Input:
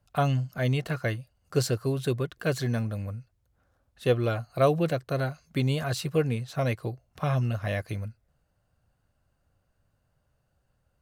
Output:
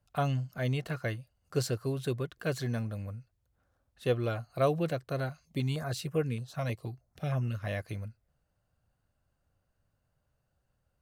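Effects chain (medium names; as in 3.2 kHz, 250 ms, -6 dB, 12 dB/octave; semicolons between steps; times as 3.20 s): 5.29–7.63 s: step-sequenced notch 6.4 Hz 370–4200 Hz; trim -5 dB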